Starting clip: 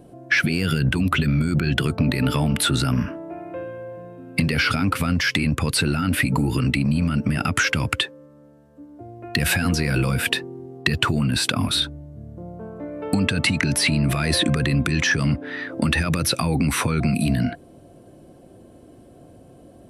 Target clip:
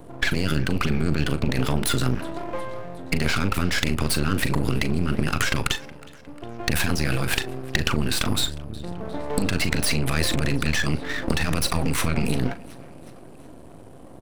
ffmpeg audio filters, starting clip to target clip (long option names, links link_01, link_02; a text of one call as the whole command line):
ffmpeg -i in.wav -filter_complex "[0:a]acompressor=threshold=-22dB:ratio=10,aecho=1:1:507|1014|1521|2028:0.075|0.0435|0.0252|0.0146,aeval=exprs='max(val(0),0)':channel_layout=same,atempo=1.4,asplit=2[link_01][link_02];[link_02]adelay=39,volume=-12dB[link_03];[link_01][link_03]amix=inputs=2:normalize=0,volume=6.5dB" out.wav